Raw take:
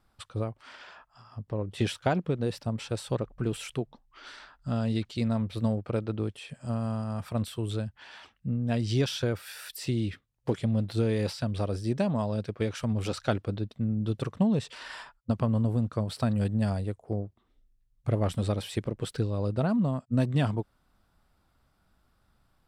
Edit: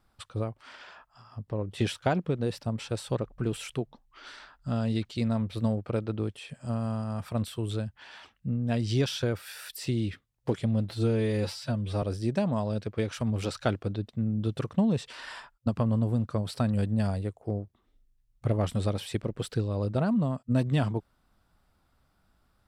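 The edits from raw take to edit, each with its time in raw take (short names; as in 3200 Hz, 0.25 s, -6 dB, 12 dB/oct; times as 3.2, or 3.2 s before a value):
10.9–11.65 stretch 1.5×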